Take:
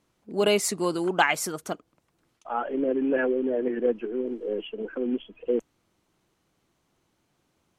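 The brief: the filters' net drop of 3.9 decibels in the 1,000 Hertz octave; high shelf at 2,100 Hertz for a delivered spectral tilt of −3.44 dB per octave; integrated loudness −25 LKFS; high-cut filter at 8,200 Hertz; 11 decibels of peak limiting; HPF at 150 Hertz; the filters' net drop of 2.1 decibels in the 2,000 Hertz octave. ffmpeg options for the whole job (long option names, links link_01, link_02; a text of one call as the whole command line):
ffmpeg -i in.wav -af "highpass=150,lowpass=8200,equalizer=frequency=1000:width_type=o:gain=-5.5,equalizer=frequency=2000:width_type=o:gain=-3,highshelf=frequency=2100:gain=4,volume=5dB,alimiter=limit=-13dB:level=0:latency=1" out.wav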